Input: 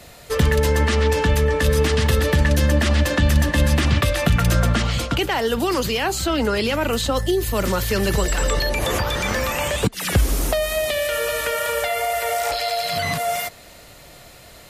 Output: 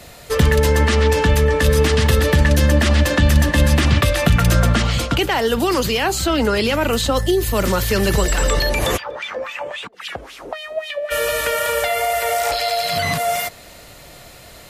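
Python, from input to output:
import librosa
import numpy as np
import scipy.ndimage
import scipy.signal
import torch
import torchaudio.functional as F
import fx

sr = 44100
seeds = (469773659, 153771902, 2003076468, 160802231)

y = fx.wah_lfo(x, sr, hz=3.7, low_hz=450.0, high_hz=3300.0, q=3.1, at=(8.96, 11.1), fade=0.02)
y = F.gain(torch.from_numpy(y), 3.0).numpy()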